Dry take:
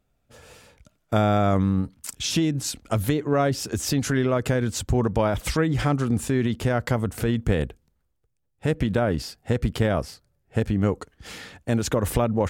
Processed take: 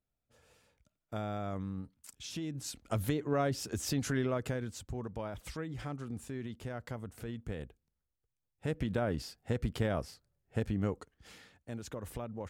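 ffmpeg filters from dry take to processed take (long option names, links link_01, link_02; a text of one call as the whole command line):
ffmpeg -i in.wav -af "volume=-1.5dB,afade=type=in:start_time=2.39:duration=0.56:silence=0.398107,afade=type=out:start_time=4.2:duration=0.63:silence=0.375837,afade=type=in:start_time=7.62:duration=1.43:silence=0.398107,afade=type=out:start_time=10.72:duration=0.83:silence=0.354813" out.wav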